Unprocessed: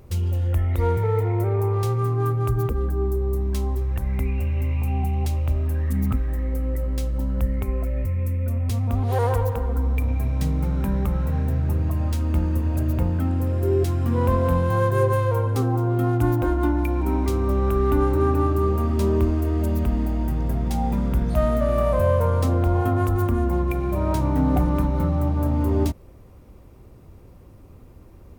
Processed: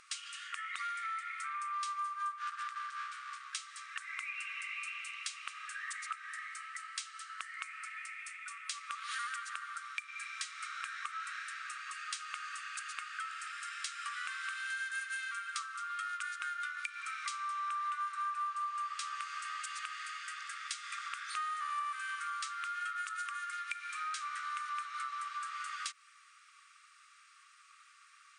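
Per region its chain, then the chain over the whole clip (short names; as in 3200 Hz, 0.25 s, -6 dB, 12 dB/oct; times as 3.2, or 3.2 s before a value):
2.38–3.55 median filter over 15 samples + hard clip -21 dBFS
whole clip: FFT band-pass 1100–9700 Hz; compressor 4:1, threshold -44 dBFS; gain +6.5 dB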